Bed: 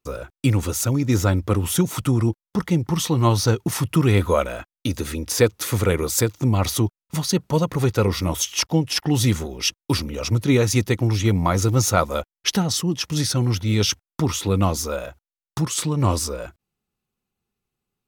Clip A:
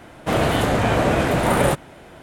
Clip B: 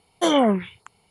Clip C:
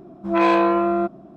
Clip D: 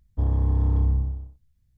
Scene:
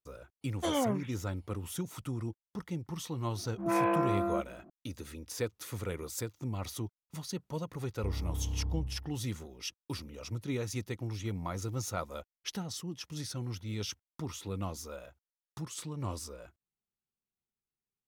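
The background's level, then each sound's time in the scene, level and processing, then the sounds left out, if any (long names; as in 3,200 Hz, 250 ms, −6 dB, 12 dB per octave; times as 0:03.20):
bed −17.5 dB
0:00.41: mix in B −12.5 dB, fades 0.02 s
0:03.34: mix in C −11.5 dB + low-pass filter 2,500 Hz 24 dB per octave
0:07.85: mix in D −13.5 dB
not used: A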